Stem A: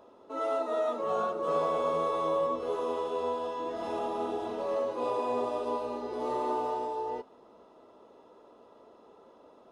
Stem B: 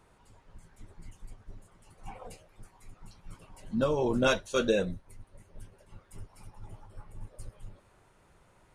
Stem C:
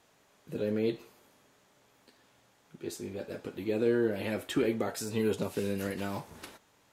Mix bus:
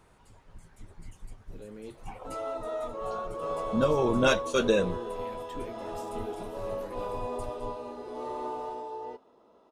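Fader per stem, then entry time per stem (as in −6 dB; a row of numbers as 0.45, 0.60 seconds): −4.5, +2.0, −14.0 decibels; 1.95, 0.00, 1.00 seconds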